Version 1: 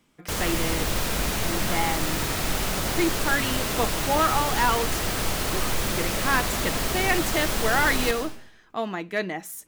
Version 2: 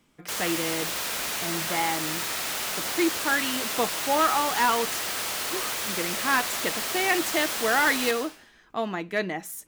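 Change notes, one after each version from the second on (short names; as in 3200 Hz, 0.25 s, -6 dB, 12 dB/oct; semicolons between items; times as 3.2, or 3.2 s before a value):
background: add HPF 1100 Hz 6 dB/oct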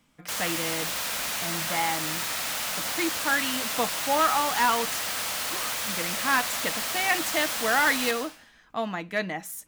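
master: add bell 380 Hz -14 dB 0.28 oct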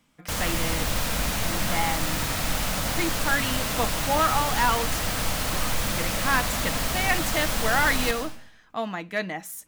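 background: remove HPF 1100 Hz 6 dB/oct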